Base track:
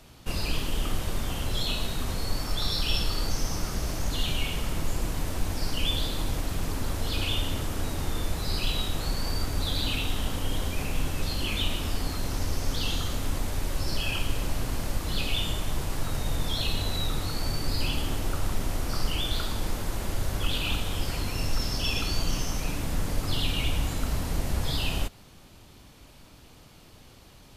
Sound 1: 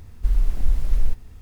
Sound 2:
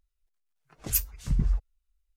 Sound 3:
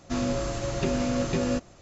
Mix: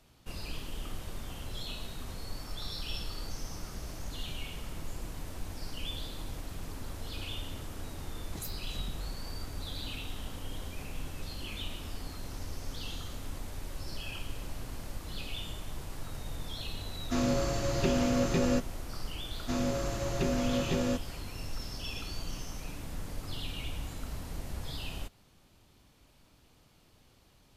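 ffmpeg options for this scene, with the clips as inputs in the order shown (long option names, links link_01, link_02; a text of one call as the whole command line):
ffmpeg -i bed.wav -i cue0.wav -i cue1.wav -i cue2.wav -filter_complex "[3:a]asplit=2[link_01][link_02];[0:a]volume=-11dB[link_03];[2:a]acompressor=threshold=-31dB:ratio=6:attack=3.2:release=140:knee=1:detection=peak,atrim=end=2.16,asetpts=PTS-STARTPTS,volume=-6dB,afade=type=in:duration=0.004:curve=hsin,afade=type=out:start_time=2.156:duration=0.004:curve=hsin,adelay=7490[link_04];[link_01]atrim=end=1.81,asetpts=PTS-STARTPTS,volume=-1.5dB,afade=type=in:duration=0.004:curve=hsin,afade=type=out:start_time=1.806:duration=0.004:curve=hsin,adelay=17010[link_05];[link_02]atrim=end=1.81,asetpts=PTS-STARTPTS,volume=-4dB,afade=type=in:duration=0.004:curve=hsin,afade=type=out:start_time=1.806:duration=0.004:curve=hsin,adelay=19380[link_06];[link_03][link_04][link_05][link_06]amix=inputs=4:normalize=0" out.wav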